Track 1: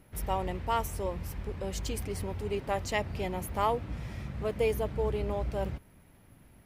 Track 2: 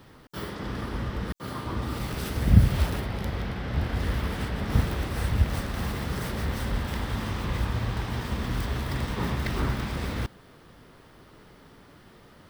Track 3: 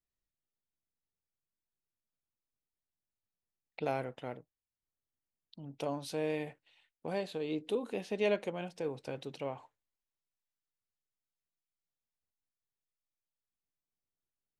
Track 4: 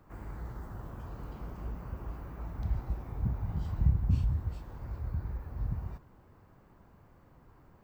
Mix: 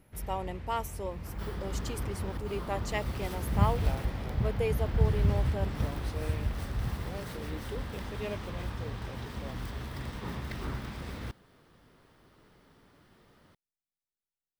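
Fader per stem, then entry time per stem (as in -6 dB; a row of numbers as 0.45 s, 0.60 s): -3.0 dB, -9.0 dB, -7.5 dB, +1.0 dB; 0.00 s, 1.05 s, 0.00 s, 1.15 s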